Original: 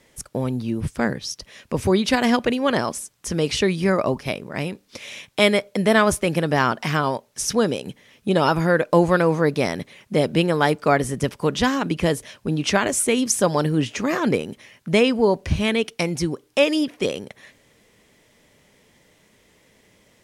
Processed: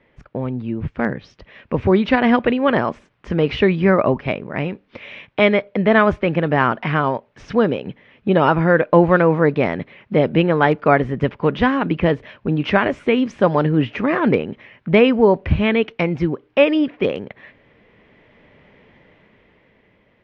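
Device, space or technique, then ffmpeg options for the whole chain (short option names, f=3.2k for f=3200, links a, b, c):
action camera in a waterproof case: -af "lowpass=f=2.7k:w=0.5412,lowpass=f=2.7k:w=1.3066,dynaudnorm=f=200:g=13:m=9dB" -ar 32000 -c:a aac -b:a 64k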